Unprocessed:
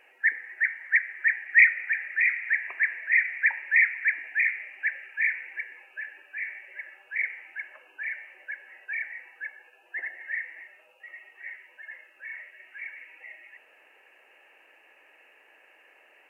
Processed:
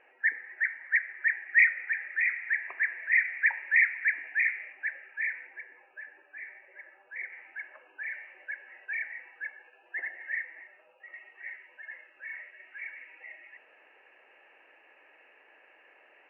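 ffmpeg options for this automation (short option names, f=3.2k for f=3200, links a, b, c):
-af "asetnsamples=n=441:p=0,asendcmd='2.99 lowpass f 2200;4.73 lowpass f 1500;5.47 lowpass f 1200;7.32 lowpass f 1800;8.14 lowpass f 2400;10.42 lowpass f 1800;11.14 lowpass f 2500',lowpass=1.8k"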